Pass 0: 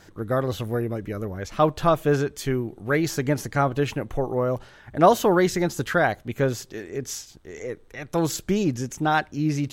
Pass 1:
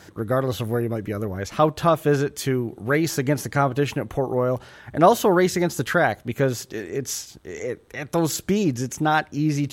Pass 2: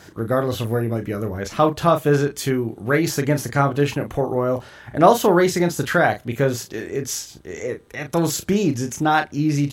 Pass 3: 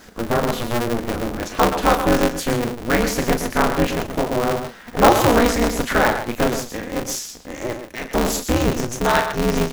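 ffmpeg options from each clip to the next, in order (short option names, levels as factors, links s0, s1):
-filter_complex "[0:a]highpass=63,equalizer=f=11000:t=o:w=0.43:g=3.5,asplit=2[s0][s1];[s1]acompressor=threshold=0.0316:ratio=6,volume=0.708[s2];[s0][s2]amix=inputs=2:normalize=0"
-filter_complex "[0:a]asplit=2[s0][s1];[s1]adelay=35,volume=0.398[s2];[s0][s2]amix=inputs=2:normalize=0,volume=1.19"
-af "acrusher=bits=8:mix=0:aa=0.5,aecho=1:1:122:0.376,aeval=exprs='val(0)*sgn(sin(2*PI*120*n/s))':c=same"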